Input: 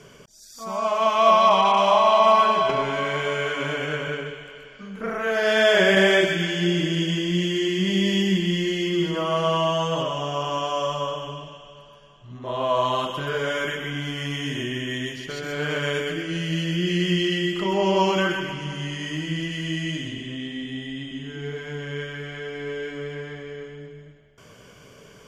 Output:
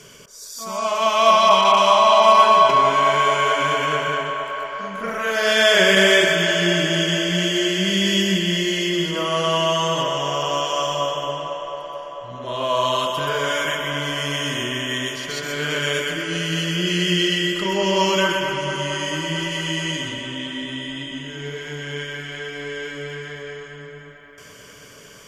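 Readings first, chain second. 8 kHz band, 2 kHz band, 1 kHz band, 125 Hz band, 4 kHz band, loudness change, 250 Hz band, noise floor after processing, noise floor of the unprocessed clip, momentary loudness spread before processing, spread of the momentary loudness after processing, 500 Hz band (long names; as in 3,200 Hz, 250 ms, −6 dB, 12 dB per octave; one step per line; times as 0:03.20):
+10.5 dB, +5.0 dB, +4.5 dB, 0.0 dB, +7.0 dB, +4.0 dB, +0.5 dB, −44 dBFS, −49 dBFS, 17 LU, 17 LU, +2.0 dB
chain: high-shelf EQ 2,800 Hz +12 dB
notch filter 770 Hz, Q 12
delay with a band-pass on its return 222 ms, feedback 81%, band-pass 860 Hz, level −6 dB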